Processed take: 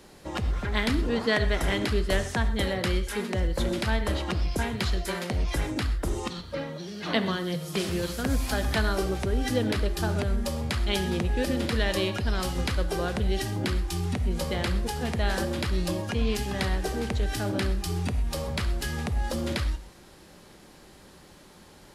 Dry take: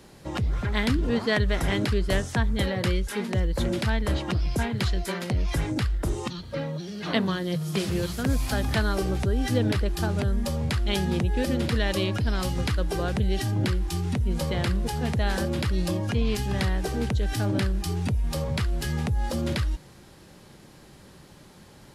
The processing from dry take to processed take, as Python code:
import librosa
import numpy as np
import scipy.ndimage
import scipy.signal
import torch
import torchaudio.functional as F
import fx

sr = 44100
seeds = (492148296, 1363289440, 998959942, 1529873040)

y = fx.peak_eq(x, sr, hz=130.0, db=-7.5, octaves=1.1)
y = fx.rev_gated(y, sr, seeds[0], gate_ms=150, shape='flat', drr_db=9.5)